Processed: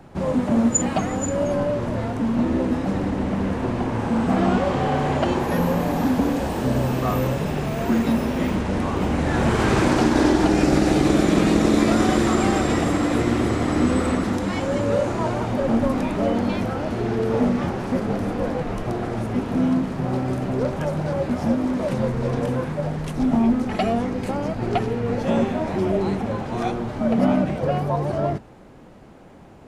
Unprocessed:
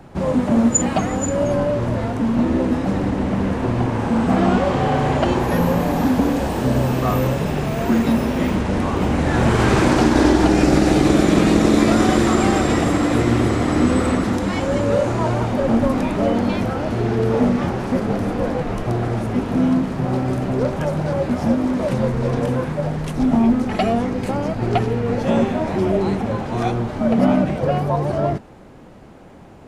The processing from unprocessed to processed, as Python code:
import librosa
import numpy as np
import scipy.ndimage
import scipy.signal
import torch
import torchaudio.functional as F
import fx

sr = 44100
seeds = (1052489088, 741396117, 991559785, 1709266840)

y = fx.hum_notches(x, sr, base_hz=60, count=2)
y = F.gain(torch.from_numpy(y), -3.0).numpy()